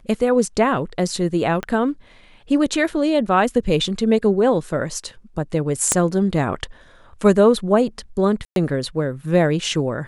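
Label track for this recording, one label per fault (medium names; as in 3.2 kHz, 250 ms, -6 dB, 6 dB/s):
1.630000	1.630000	pop -12 dBFS
5.920000	5.920000	pop -3 dBFS
8.450000	8.560000	dropout 112 ms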